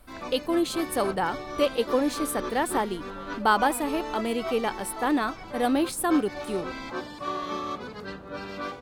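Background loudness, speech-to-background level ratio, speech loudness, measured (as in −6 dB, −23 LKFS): −36.0 LKFS, 9.0 dB, −27.0 LKFS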